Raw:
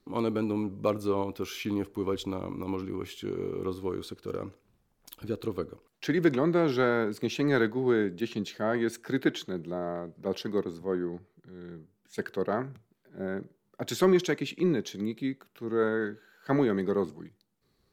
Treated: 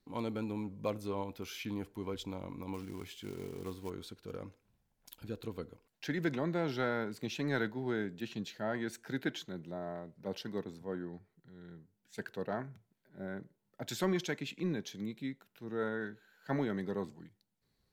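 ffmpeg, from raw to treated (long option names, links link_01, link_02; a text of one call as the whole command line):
ffmpeg -i in.wav -filter_complex "[0:a]asettb=1/sr,asplit=3[link_01][link_02][link_03];[link_01]atrim=end=2.744[link_04];[link_02]atrim=start=2.74:end=3.9,asetpts=PTS-STARTPTS,afade=type=in:duration=0.004:curve=qsin,afade=type=out:start_time=1.156:duration=0.004:curve=qsin,acrusher=bits=5:mode=log:mix=0:aa=0.000001[link_05];[link_03]atrim=start=3.896[link_06];[link_04][link_05]acrossfade=duration=0.004:curve1=hsin:curve2=qsin[link_07];[link_07][link_06]acrossfade=duration=0.004:curve1=qsin:curve2=hsin,equalizer=frequency=370:width_type=o:width=0.81:gain=-6.5,bandreject=frequency=1200:width=6.4,volume=-5.5dB" out.wav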